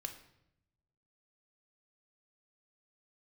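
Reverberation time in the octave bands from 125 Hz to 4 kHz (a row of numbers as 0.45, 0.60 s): 1.5, 1.1, 0.85, 0.75, 0.70, 0.65 s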